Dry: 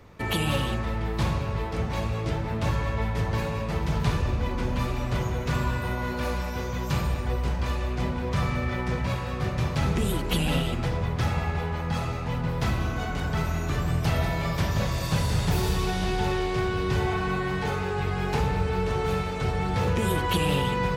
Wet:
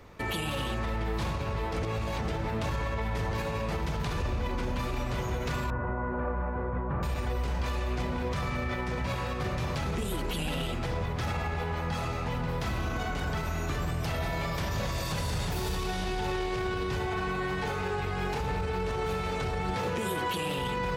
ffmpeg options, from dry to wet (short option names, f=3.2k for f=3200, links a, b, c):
-filter_complex "[0:a]asettb=1/sr,asplit=3[a][b][c];[a]atrim=end=5.704[d];[b]atrim=start=5.7:end=7.03,asetpts=PTS-STARTPTS,afade=t=in:d=0.004:c=qsin,afade=t=out:st=1.326:d=0.004:c=qsin,lowpass=f=1.5k:w=0.5412,lowpass=f=1.5k:w=1.3066[e];[c]atrim=start=7.026[f];[d][e]acrossfade=d=0.004:c1=hsin:c2=qsin[g];[g][f]acrossfade=d=0.004:c1=qsin:c2=hsin,asettb=1/sr,asplit=3[h][i][j];[h]atrim=end=19.734[k];[i]atrim=start=19.73:end=20.58,asetpts=PTS-STARTPTS,afade=t=in:d=0.004:c=qsin,afade=t=out:st=0.846:d=0.004:c=qsin,highpass=130[l];[j]atrim=start=20.576[m];[k][l]acrossfade=d=0.004:c1=hsin:c2=qsin[n];[n][m]acrossfade=d=0.004:c1=qsin:c2=hsin,asplit=3[o][p][q];[o]atrim=end=1.832[r];[p]atrim=start=1.828:end=2.282,asetpts=PTS-STARTPTS,areverse[s];[q]atrim=start=2.278[t];[r][s]acrossfade=d=0.004:c1=hsin:c2=hsin[u];[u][t]acrossfade=d=0.004:c1=hsin:c2=hsin,equalizer=f=130:t=o:w=1.7:g=-4.5,alimiter=limit=-24dB:level=0:latency=1:release=38,volume=1dB"